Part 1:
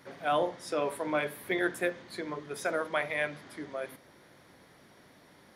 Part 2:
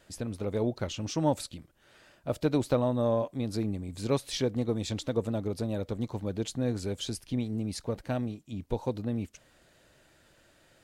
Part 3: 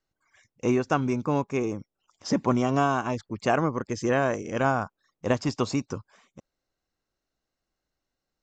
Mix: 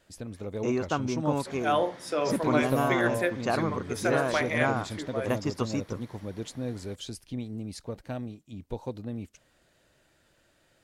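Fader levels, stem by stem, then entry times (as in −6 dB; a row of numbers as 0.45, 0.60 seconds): +2.5, −4.0, −4.5 decibels; 1.40, 0.00, 0.00 seconds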